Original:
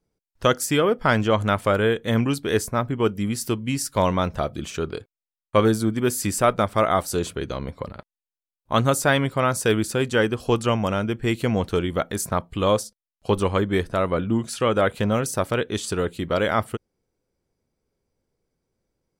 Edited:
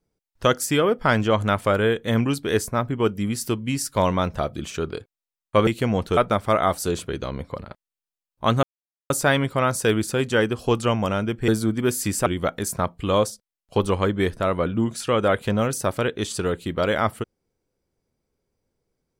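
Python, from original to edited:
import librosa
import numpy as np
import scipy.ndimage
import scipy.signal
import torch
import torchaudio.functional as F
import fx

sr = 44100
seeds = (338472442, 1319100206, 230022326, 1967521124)

y = fx.edit(x, sr, fx.swap(start_s=5.67, length_s=0.78, other_s=11.29, other_length_s=0.5),
    fx.insert_silence(at_s=8.91, length_s=0.47), tone=tone)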